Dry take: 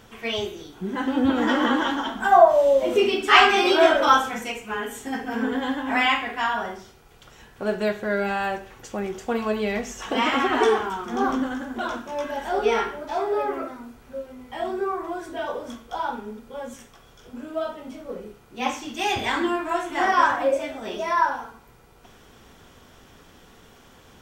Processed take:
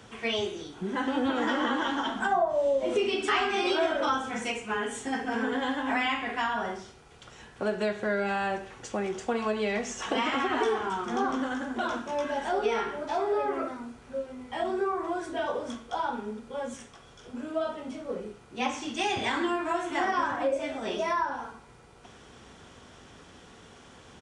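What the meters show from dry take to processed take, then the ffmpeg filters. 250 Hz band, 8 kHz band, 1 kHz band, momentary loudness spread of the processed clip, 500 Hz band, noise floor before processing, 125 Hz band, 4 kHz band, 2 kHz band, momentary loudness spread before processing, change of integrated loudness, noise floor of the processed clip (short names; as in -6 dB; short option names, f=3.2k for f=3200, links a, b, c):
-5.0 dB, -3.0 dB, -7.0 dB, 11 LU, -6.0 dB, -52 dBFS, -4.0 dB, -6.5 dB, -6.5 dB, 19 LU, -7.0 dB, -53 dBFS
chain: -filter_complex "[0:a]highpass=49,acrossover=split=96|370[a][b][c];[a]acompressor=threshold=-57dB:ratio=4[d];[b]acompressor=threshold=-34dB:ratio=4[e];[c]acompressor=threshold=-27dB:ratio=4[f];[d][e][f]amix=inputs=3:normalize=0,aresample=22050,aresample=44100"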